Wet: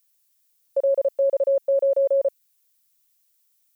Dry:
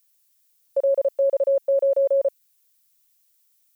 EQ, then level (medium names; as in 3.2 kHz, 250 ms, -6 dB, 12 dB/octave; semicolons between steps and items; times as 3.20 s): bass shelf 400 Hz +5 dB; -2.0 dB